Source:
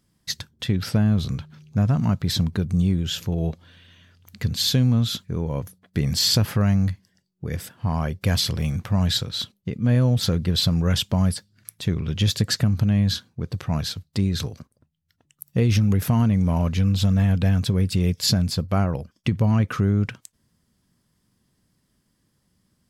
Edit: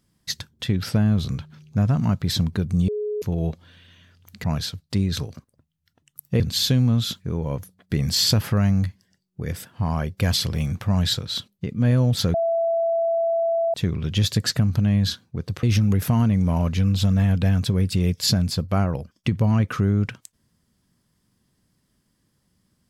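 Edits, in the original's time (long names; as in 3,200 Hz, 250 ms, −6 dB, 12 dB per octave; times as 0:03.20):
0:02.88–0:03.22: beep over 420 Hz −23.5 dBFS
0:10.38–0:11.78: beep over 667 Hz −18.5 dBFS
0:13.67–0:15.63: move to 0:04.44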